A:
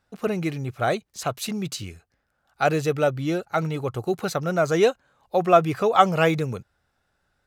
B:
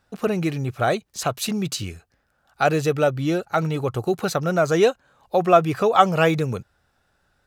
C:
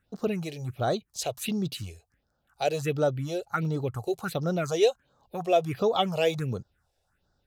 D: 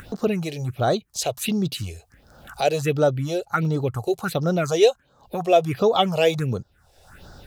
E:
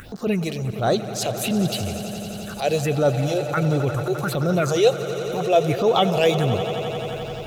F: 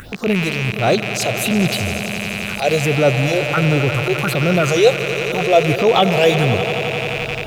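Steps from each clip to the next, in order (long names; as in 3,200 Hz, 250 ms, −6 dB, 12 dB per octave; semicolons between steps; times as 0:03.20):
notch filter 2,100 Hz, Q 24; in parallel at −2 dB: downward compressor, threshold −28 dBFS, peak gain reduction 17 dB
dynamic equaliser 3,500 Hz, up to +5 dB, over −38 dBFS, Q 1.3; all-pass phaser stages 4, 1.4 Hz, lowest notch 200–2,500 Hz; level −5 dB
upward compression, threshold −31 dBFS; level +6 dB
echo that builds up and dies away 87 ms, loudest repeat 5, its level −17 dB; transient designer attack −8 dB, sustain 0 dB; level +2.5 dB
loose part that buzzes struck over −36 dBFS, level −16 dBFS; level +4.5 dB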